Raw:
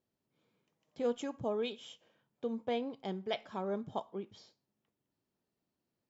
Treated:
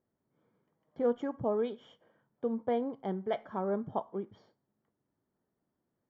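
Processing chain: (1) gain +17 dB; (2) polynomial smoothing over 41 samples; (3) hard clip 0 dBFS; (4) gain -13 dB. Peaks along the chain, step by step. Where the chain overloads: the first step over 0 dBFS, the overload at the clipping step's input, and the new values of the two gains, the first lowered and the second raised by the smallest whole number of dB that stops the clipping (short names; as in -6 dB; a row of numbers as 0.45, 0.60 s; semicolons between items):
-6.0, -6.0, -6.0, -19.0 dBFS; no overload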